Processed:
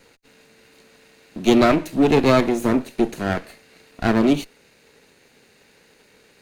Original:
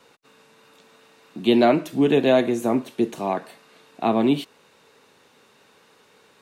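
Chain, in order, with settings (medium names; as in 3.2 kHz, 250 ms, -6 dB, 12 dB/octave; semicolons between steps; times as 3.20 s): comb filter that takes the minimum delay 0.45 ms; trim +3 dB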